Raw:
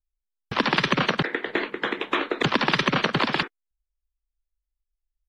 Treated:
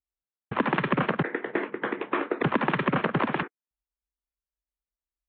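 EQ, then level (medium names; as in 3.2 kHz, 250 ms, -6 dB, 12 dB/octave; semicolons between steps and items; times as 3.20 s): boxcar filter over 9 samples; high-pass 86 Hz 12 dB/octave; distance through air 340 m; 0.0 dB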